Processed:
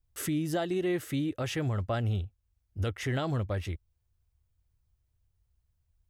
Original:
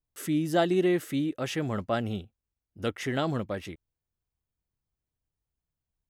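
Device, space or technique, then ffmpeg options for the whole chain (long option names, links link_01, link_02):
car stereo with a boomy subwoofer: -af "lowshelf=frequency=130:width_type=q:width=1.5:gain=11,alimiter=level_in=1.5dB:limit=-24dB:level=0:latency=1:release=449,volume=-1.5dB,volume=3.5dB"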